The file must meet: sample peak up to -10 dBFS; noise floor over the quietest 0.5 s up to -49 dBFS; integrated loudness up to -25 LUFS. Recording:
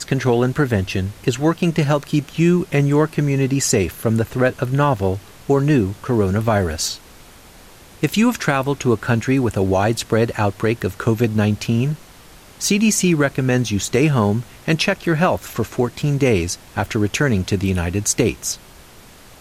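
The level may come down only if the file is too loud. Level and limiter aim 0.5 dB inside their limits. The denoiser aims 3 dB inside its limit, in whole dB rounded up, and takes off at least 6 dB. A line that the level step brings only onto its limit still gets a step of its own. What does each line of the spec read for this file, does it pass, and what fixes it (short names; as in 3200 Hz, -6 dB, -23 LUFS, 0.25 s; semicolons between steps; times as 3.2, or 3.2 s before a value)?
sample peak -5.0 dBFS: fail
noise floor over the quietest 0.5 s -44 dBFS: fail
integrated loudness -19.0 LUFS: fail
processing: gain -6.5 dB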